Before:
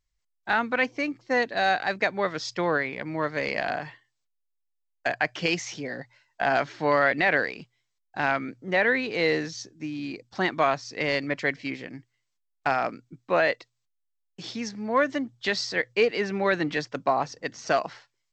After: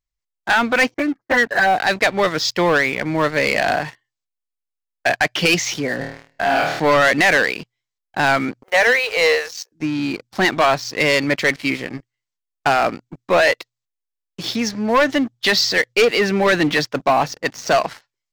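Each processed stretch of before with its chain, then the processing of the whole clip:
0.94–1.80 s: expander -48 dBFS + resonant high shelf 2.2 kHz -9.5 dB, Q 3 + touch-sensitive flanger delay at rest 9.4 ms, full sweep at -16 dBFS
5.99–6.80 s: compression, threshold -28 dBFS + flutter echo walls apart 4.4 m, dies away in 0.8 s
8.63–9.72 s: companding laws mixed up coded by A + Chebyshev high-pass 460 Hz, order 5 + peaking EQ 3.6 kHz -4 dB 0.32 oct
whole clip: dynamic bell 3.4 kHz, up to +5 dB, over -40 dBFS, Q 1.1; waveshaping leveller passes 3

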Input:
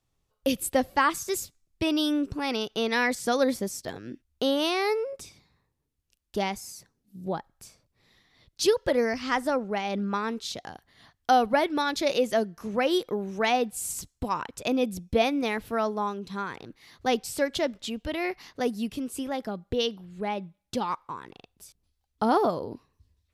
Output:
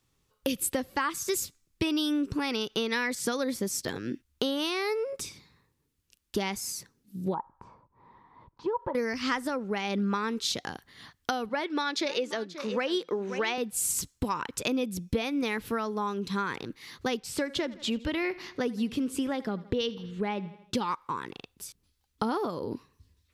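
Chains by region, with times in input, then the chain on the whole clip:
7.34–8.95 s: compression 2.5:1, threshold -37 dBFS + resonant low-pass 960 Hz, resonance Q 11
11.49–13.58 s: band-pass 290–6300 Hz + delay 533 ms -16.5 dB
17.20–20.75 s: low-pass 3.7 kHz 6 dB/octave + feedback delay 82 ms, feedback 53%, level -21 dB
whole clip: bass shelf 72 Hz -10 dB; compression 5:1, threshold -32 dBFS; peaking EQ 680 Hz -9.5 dB 0.53 oct; trim +7 dB

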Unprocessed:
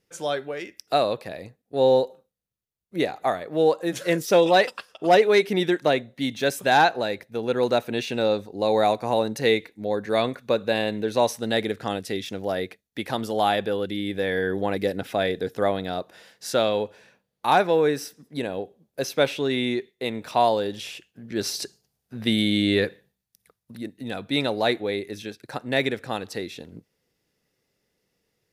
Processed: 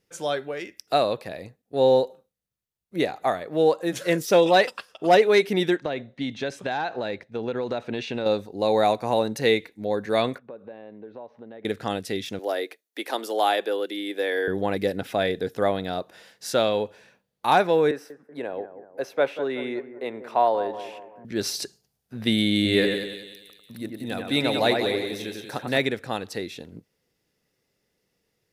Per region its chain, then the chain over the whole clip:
5.76–8.26 s: distance through air 110 m + compression 10:1, threshold -23 dBFS
10.38–11.65 s: compression 4:1, threshold -38 dBFS + band-pass filter 530 Hz, Q 0.54 + distance through air 320 m
12.39–14.48 s: steep high-pass 290 Hz + treble shelf 10 kHz +5.5 dB
17.91–21.25 s: three-band isolator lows -14 dB, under 320 Hz, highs -15 dB, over 2.1 kHz + bucket-brigade echo 188 ms, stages 2048, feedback 46%, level -12 dB
22.55–25.78 s: treble shelf 11 kHz +10 dB + two-band feedback delay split 2.8 kHz, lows 96 ms, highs 181 ms, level -4.5 dB
whole clip: none

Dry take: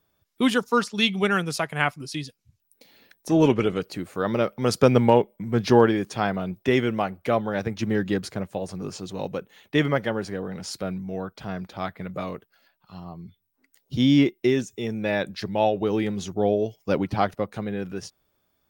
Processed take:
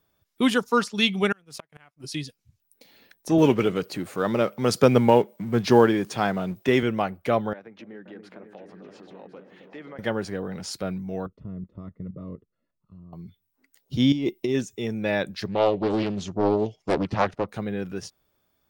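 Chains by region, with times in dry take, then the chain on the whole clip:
1.32–2.04 s: companding laws mixed up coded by A + inverted gate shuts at -18 dBFS, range -31 dB + compression 1.5:1, threshold -46 dBFS
3.38–6.83 s: companding laws mixed up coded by mu + high-pass 100 Hz
7.53–9.99 s: three-band isolator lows -22 dB, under 200 Hz, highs -21 dB, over 3 kHz + compression 2.5:1, threshold -47 dBFS + delay with an opening low-pass 263 ms, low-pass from 400 Hz, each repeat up 2 oct, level -6 dB
11.26–13.13 s: bass shelf 150 Hz +5.5 dB + level held to a coarse grid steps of 11 dB + boxcar filter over 56 samples
14.12–14.55 s: peaking EQ 1.6 kHz -13 dB 0.61 oct + compressor with a negative ratio -25 dBFS
15.46–17.49 s: low-pass 6.6 kHz + loudspeaker Doppler distortion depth 0.67 ms
whole clip: none

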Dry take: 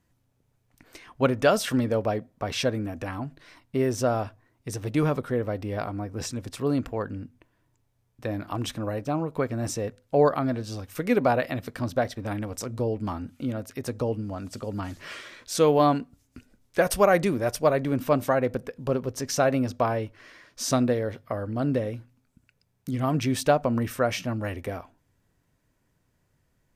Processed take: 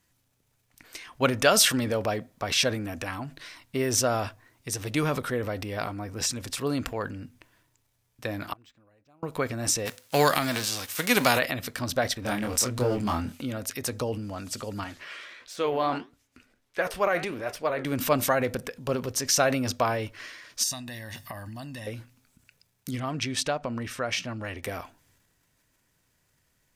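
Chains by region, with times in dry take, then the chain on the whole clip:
8.53–9.23 s: Bessel low-pass 7 kHz + inverted gate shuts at -33 dBFS, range -31 dB + decimation joined by straight lines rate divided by 4×
9.85–11.38 s: formants flattened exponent 0.6 + high-pass 110 Hz
12.22–13.42 s: waveshaping leveller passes 1 + doubling 24 ms -3 dB
14.84–17.85 s: de-esser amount 65% + tone controls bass -7 dB, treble -11 dB + flange 1.5 Hz, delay 6 ms, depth 9.5 ms, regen -75%
20.63–21.87 s: treble shelf 3.3 kHz +11.5 dB + comb 1.1 ms, depth 86% + compression 20:1, threshold -32 dBFS
22.99–24.63 s: compression 1.5:1, threshold -31 dBFS + transient shaper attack -1 dB, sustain -7 dB + distance through air 62 m
whole clip: transient shaper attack +1 dB, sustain +6 dB; tilt shelf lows -6 dB, about 1.3 kHz; trim +1.5 dB

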